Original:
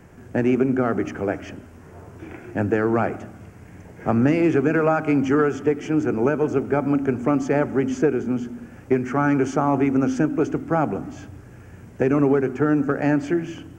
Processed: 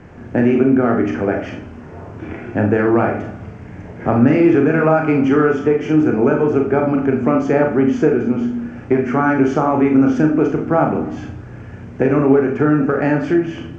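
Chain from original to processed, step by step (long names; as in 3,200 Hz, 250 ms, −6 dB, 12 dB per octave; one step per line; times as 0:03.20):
convolution reverb RT60 0.35 s, pre-delay 26 ms, DRR 2 dB
in parallel at −0.5 dB: downward compressor, threshold −24 dBFS, peak gain reduction 13 dB
on the sum: high-frequency loss of the air 150 metres
level +1.5 dB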